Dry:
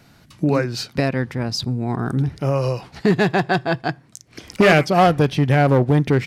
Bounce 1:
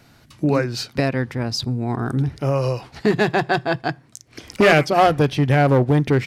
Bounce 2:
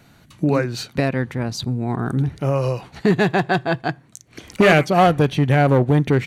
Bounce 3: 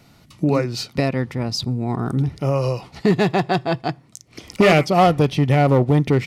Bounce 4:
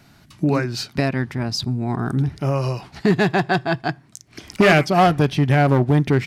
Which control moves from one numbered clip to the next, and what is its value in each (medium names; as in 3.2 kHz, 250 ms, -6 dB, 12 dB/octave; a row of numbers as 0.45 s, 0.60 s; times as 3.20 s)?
band-stop, frequency: 180 Hz, 5.1 kHz, 1.6 kHz, 500 Hz